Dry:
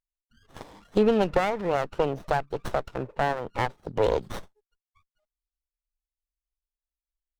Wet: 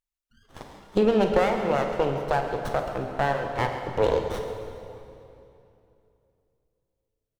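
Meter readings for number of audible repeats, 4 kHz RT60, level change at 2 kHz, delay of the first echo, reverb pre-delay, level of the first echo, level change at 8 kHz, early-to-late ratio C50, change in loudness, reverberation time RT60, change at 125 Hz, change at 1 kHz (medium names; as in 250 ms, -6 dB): 2, 2.3 s, +1.5 dB, 50 ms, 15 ms, -14.0 dB, no reading, 4.5 dB, +1.5 dB, 2.8 s, +2.0 dB, +1.5 dB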